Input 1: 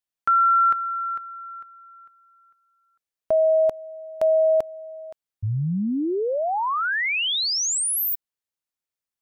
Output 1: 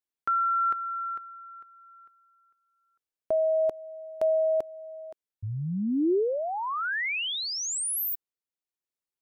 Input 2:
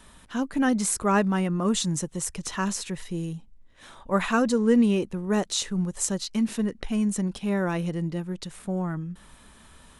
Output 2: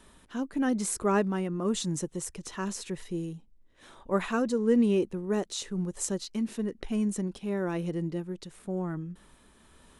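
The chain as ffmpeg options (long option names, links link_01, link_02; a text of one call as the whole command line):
ffmpeg -i in.wav -af "tremolo=f=1:d=0.29,equalizer=frequency=370:width_type=o:width=1:gain=7,volume=-5.5dB" out.wav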